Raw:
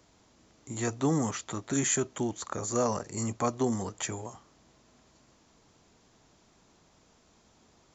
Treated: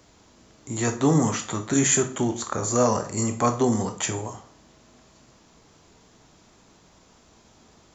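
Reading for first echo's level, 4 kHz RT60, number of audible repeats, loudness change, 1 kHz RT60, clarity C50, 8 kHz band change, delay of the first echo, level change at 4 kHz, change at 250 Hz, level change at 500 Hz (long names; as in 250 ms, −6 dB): no echo audible, 0.40 s, no echo audible, +7.5 dB, 0.45 s, 12.0 dB, can't be measured, no echo audible, +7.5 dB, +7.5 dB, +7.0 dB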